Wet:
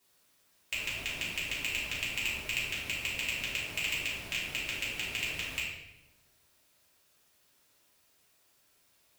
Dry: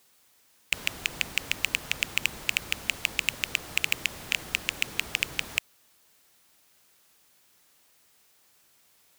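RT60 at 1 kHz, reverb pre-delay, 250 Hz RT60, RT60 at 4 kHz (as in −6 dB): 0.85 s, 3 ms, 1.3 s, 0.80 s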